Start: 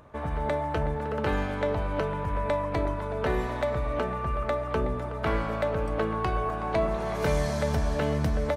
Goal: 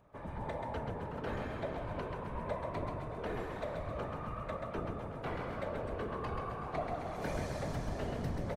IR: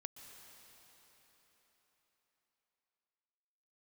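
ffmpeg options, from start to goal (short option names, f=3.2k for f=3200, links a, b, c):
-filter_complex "[0:a]afftfilt=real='hypot(re,im)*cos(2*PI*random(0))':imag='hypot(re,im)*sin(2*PI*random(1))':win_size=512:overlap=0.75,asplit=8[a][b][c][d][e][f][g][h];[b]adelay=133,afreqshift=30,volume=-5dB[i];[c]adelay=266,afreqshift=60,volume=-10.7dB[j];[d]adelay=399,afreqshift=90,volume=-16.4dB[k];[e]adelay=532,afreqshift=120,volume=-22dB[l];[f]adelay=665,afreqshift=150,volume=-27.7dB[m];[g]adelay=798,afreqshift=180,volume=-33.4dB[n];[h]adelay=931,afreqshift=210,volume=-39.1dB[o];[a][i][j][k][l][m][n][o]amix=inputs=8:normalize=0,volume=-6.5dB"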